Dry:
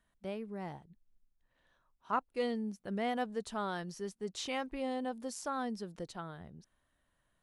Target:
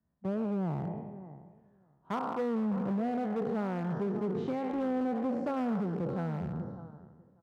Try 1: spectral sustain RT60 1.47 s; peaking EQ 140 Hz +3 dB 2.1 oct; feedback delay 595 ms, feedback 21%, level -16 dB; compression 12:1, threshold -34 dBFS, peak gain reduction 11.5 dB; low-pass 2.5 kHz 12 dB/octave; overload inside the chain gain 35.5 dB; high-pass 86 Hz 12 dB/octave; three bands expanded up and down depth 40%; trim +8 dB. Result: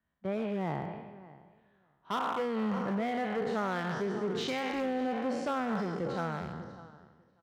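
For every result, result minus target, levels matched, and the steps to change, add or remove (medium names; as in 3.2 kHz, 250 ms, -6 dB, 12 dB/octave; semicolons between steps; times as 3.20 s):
2 kHz band +9.0 dB; 125 Hz band -3.5 dB
change: low-pass 900 Hz 12 dB/octave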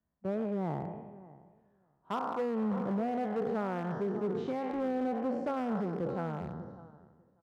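125 Hz band -2.5 dB
change: peaking EQ 140 Hz +9.5 dB 2.1 oct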